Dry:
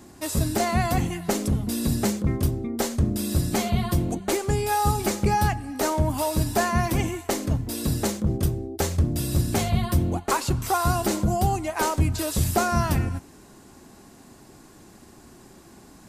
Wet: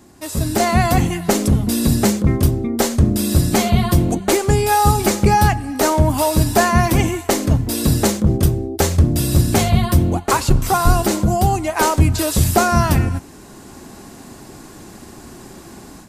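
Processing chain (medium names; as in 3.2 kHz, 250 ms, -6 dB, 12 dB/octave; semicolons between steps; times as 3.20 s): 10.32–11.03 s: octave divider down 2 oct, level +3 dB; level rider gain up to 11 dB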